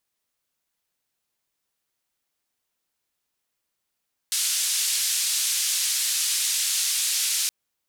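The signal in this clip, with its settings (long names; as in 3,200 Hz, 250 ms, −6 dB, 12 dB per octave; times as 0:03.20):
band-limited noise 3,300–10,000 Hz, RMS −24.5 dBFS 3.17 s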